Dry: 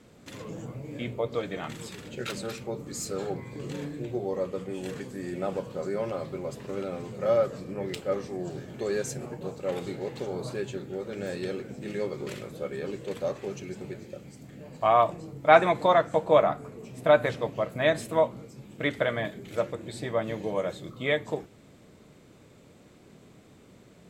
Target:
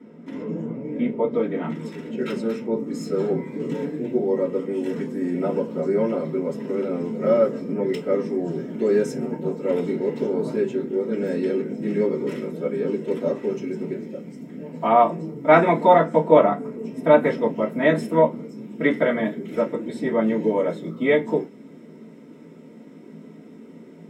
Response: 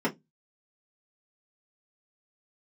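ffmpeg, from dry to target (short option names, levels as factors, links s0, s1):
-filter_complex "[0:a]asetnsamples=n=441:p=0,asendcmd='1.85 highshelf g 3;3.13 highshelf g 8.5',highshelf=f=4400:g=-5.5[s0];[1:a]atrim=start_sample=2205[s1];[s0][s1]afir=irnorm=-1:irlink=0,volume=0.473"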